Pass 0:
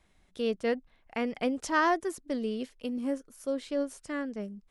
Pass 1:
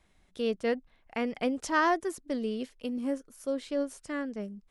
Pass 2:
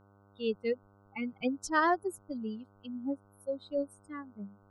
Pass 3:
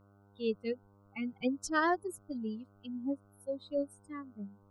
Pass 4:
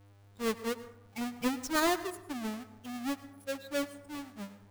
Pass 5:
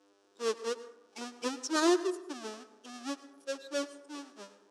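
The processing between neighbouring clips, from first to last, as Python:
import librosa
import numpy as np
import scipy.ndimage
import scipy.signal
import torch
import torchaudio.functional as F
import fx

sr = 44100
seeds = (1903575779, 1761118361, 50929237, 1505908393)

y1 = x
y2 = fx.bin_expand(y1, sr, power=3.0)
y2 = fx.dmg_buzz(y2, sr, base_hz=100.0, harmonics=15, level_db=-64.0, tilt_db=-4, odd_only=False)
y2 = y2 * librosa.db_to_amplitude(1.5)
y3 = fx.notch_cascade(y2, sr, direction='rising', hz=1.9)
y4 = fx.halfwave_hold(y3, sr)
y4 = fx.rev_plate(y4, sr, seeds[0], rt60_s=0.8, hf_ratio=0.45, predelay_ms=85, drr_db=13.5)
y4 = y4 * librosa.db_to_amplitude(-3.0)
y5 = fx.cabinet(y4, sr, low_hz=320.0, low_slope=24, high_hz=9000.0, hz=(360.0, 760.0, 2100.0, 5600.0), db=(10, -6, -9, 6))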